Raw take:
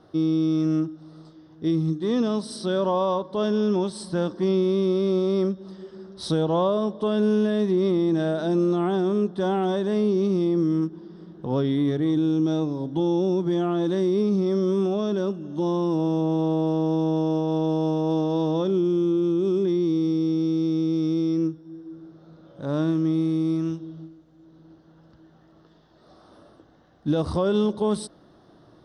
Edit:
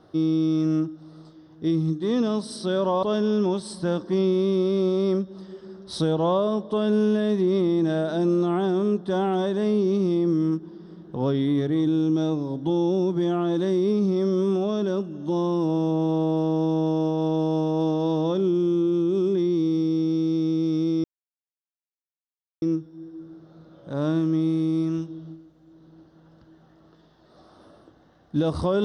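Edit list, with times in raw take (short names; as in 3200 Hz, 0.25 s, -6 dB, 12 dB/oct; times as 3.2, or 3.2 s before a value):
3.03–3.33 cut
21.34 insert silence 1.58 s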